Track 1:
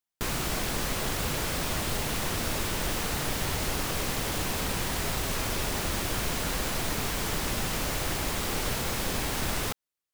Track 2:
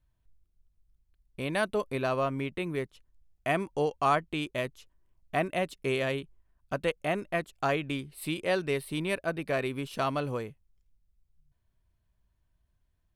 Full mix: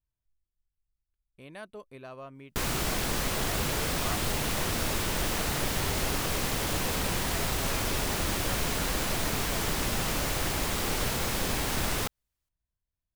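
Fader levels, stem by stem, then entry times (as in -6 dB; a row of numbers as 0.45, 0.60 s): +0.5, -15.0 dB; 2.35, 0.00 s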